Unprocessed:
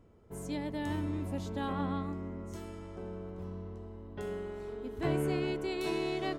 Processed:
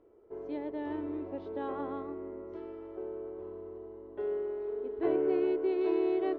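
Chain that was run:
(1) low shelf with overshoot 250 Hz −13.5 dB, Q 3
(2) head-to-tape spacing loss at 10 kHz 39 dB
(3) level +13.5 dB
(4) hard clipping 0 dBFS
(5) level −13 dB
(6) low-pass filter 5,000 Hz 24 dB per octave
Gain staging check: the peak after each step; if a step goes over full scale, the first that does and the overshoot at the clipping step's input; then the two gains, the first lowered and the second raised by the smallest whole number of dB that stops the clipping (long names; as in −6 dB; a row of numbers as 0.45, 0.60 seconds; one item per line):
−16.5, −18.5, −5.0, −5.0, −18.0, −18.0 dBFS
no step passes full scale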